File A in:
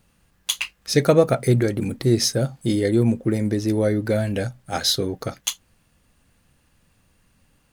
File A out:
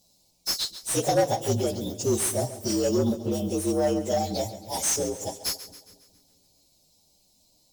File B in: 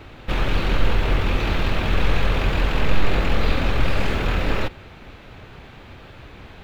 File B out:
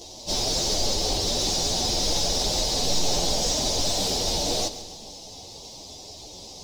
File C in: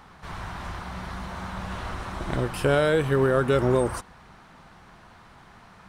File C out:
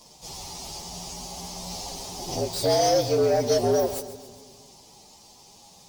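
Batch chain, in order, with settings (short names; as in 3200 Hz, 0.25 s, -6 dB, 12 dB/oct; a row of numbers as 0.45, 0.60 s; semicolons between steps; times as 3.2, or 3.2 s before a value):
inharmonic rescaling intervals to 117%; EQ curve 830 Hz 0 dB, 1500 Hz -29 dB, 5100 Hz +15 dB; overdrive pedal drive 17 dB, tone 2900 Hz, clips at -8 dBFS; split-band echo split 350 Hz, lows 0.219 s, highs 0.137 s, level -14 dB; normalise peaks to -12 dBFS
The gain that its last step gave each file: -6.0, -2.5, -3.0 dB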